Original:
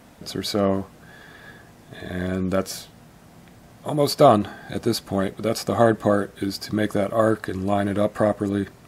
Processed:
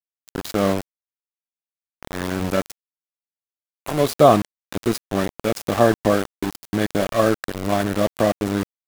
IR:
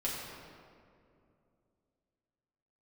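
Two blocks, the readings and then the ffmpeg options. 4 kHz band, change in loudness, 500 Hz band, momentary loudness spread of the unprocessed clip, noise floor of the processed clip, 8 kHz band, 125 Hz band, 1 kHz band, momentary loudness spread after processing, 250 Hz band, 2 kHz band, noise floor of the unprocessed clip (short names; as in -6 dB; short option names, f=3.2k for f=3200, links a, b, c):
-0.5 dB, +1.5 dB, +1.0 dB, 14 LU, under -85 dBFS, +1.5 dB, +0.5 dB, +1.5 dB, 14 LU, +0.5 dB, +2.5 dB, -49 dBFS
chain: -af "bandreject=f=4.5k:w=12,aeval=exprs='val(0)*gte(abs(val(0)),0.0668)':c=same,volume=1.5dB"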